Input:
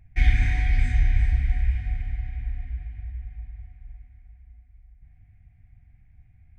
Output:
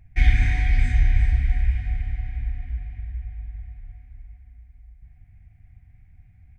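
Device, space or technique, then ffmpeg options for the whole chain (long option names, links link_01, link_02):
ducked delay: -filter_complex "[0:a]asplit=3[link_01][link_02][link_03];[link_02]adelay=299,volume=-5.5dB[link_04];[link_03]apad=whole_len=303773[link_05];[link_04][link_05]sidechaincompress=threshold=-34dB:ratio=8:attack=16:release=546[link_06];[link_01][link_06]amix=inputs=2:normalize=0,volume=2dB"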